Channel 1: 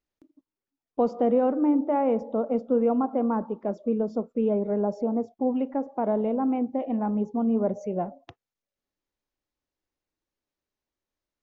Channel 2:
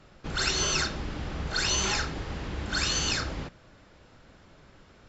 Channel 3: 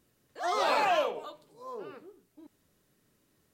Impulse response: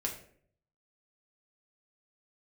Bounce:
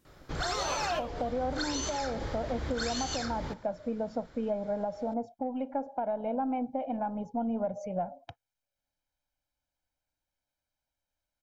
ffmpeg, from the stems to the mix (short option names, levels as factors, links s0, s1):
-filter_complex "[0:a]aecho=1:1:1.3:0.86,aeval=exprs='0.266*(cos(1*acos(clip(val(0)/0.266,-1,1)))-cos(1*PI/2))+0.00211*(cos(6*acos(clip(val(0)/0.266,-1,1)))-cos(6*PI/2))':c=same,volume=0.794,asplit=2[s0][s1];[1:a]equalizer=f=2700:t=o:w=0.24:g=-9,adelay=50,volume=1[s2];[2:a]volume=1[s3];[s1]apad=whole_len=156024[s4];[s3][s4]sidechaincompress=threshold=0.0501:ratio=8:attack=16:release=487[s5];[s0][s2]amix=inputs=2:normalize=0,equalizer=f=210:t=o:w=0.31:g=-8.5,acompressor=threshold=0.0447:ratio=6,volume=1[s6];[s5][s6]amix=inputs=2:normalize=0,alimiter=limit=0.0794:level=0:latency=1:release=372"